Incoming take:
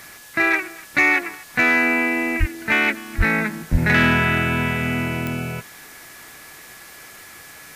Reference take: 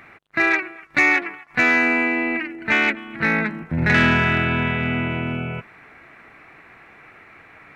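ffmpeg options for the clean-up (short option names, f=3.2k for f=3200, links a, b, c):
-filter_complex "[0:a]adeclick=t=4,bandreject=f=1.7k:w=30,asplit=3[a][b][c];[a]afade=t=out:st=2.39:d=0.02[d];[b]highpass=f=140:w=0.5412,highpass=f=140:w=1.3066,afade=t=in:st=2.39:d=0.02,afade=t=out:st=2.51:d=0.02[e];[c]afade=t=in:st=2.51:d=0.02[f];[d][e][f]amix=inputs=3:normalize=0,asplit=3[g][h][i];[g]afade=t=out:st=3.17:d=0.02[j];[h]highpass=f=140:w=0.5412,highpass=f=140:w=1.3066,afade=t=in:st=3.17:d=0.02,afade=t=out:st=3.29:d=0.02[k];[i]afade=t=in:st=3.29:d=0.02[l];[j][k][l]amix=inputs=3:normalize=0,asplit=3[m][n][o];[m]afade=t=out:st=3.71:d=0.02[p];[n]highpass=f=140:w=0.5412,highpass=f=140:w=1.3066,afade=t=in:st=3.71:d=0.02,afade=t=out:st=3.83:d=0.02[q];[o]afade=t=in:st=3.83:d=0.02[r];[p][q][r]amix=inputs=3:normalize=0,afwtdn=0.0071"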